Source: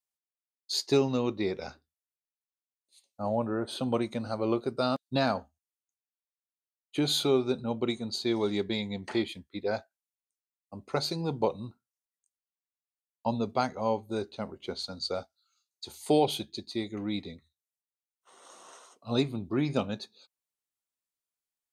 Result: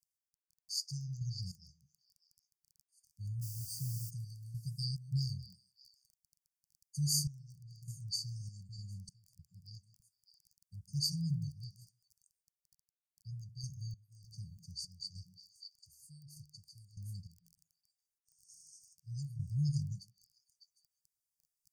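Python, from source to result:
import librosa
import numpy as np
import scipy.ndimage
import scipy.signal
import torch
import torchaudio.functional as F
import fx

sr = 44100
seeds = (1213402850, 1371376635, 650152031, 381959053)

p1 = fx.quant_dither(x, sr, seeds[0], bits=8, dither='triangular', at=(3.41, 4.09), fade=0.02)
p2 = p1 + fx.echo_stepped(p1, sr, ms=151, hz=200.0, octaves=1.4, feedback_pct=70, wet_db=-6, dry=0)
p3 = fx.tremolo_random(p2, sr, seeds[1], hz=3.3, depth_pct=95)
p4 = fx.dmg_crackle(p3, sr, seeds[2], per_s=15.0, level_db=-47.0)
p5 = fx.brickwall_bandstop(p4, sr, low_hz=170.0, high_hz=4500.0)
y = F.gain(torch.from_numpy(p5), 4.0).numpy()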